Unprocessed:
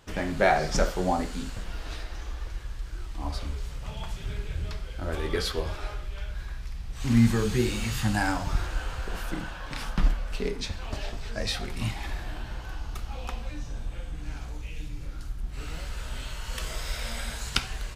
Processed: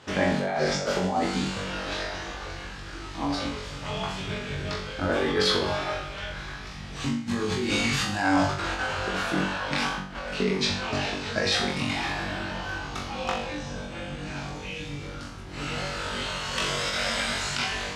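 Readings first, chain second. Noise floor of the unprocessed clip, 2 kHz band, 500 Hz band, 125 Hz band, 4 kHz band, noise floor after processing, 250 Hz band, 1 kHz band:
−39 dBFS, +6.5 dB, +3.5 dB, −2.0 dB, +7.5 dB, −39 dBFS, +2.0 dB, +4.0 dB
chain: compressor whose output falls as the input rises −30 dBFS, ratio −1
band-pass filter 140–6,000 Hz
flutter between parallel walls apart 3.6 metres, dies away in 0.49 s
level +5.5 dB

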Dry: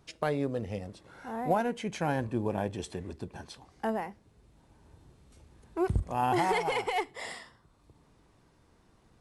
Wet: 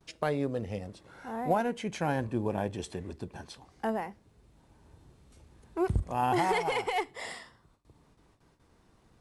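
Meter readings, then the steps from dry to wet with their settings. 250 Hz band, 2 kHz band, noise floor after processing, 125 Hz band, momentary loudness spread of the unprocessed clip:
0.0 dB, 0.0 dB, −66 dBFS, 0.0 dB, 15 LU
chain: noise gate with hold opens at −54 dBFS

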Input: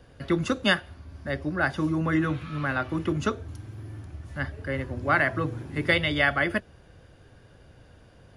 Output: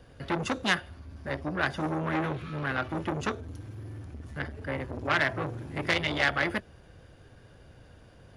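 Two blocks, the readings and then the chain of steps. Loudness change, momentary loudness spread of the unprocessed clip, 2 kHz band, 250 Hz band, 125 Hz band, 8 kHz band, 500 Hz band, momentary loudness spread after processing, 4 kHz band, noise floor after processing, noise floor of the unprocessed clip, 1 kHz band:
−3.5 dB, 17 LU, −3.0 dB, −5.5 dB, −4.5 dB, +1.0 dB, −4.0 dB, 16 LU, −2.0 dB, −54 dBFS, −54 dBFS, −2.0 dB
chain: saturating transformer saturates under 2,300 Hz

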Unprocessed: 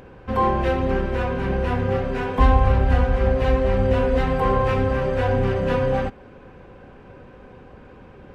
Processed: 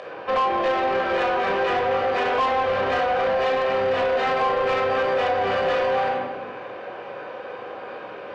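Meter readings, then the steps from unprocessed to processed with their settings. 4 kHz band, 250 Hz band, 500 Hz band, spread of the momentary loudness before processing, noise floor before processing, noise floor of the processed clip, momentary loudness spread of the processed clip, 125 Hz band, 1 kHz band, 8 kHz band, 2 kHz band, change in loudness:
+6.5 dB, −8.5 dB, +1.0 dB, 6 LU, −45 dBFS, −37 dBFS, 14 LU, −20.0 dB, +3.5 dB, can't be measured, +4.5 dB, −1.0 dB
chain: Chebyshev band-pass filter 590–4,200 Hz, order 2
rectangular room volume 2,700 cubic metres, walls furnished, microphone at 6 metres
downward compressor 4 to 1, threshold −26 dBFS, peak gain reduction 11.5 dB
soft clipping −25 dBFS, distortion −15 dB
level +9 dB

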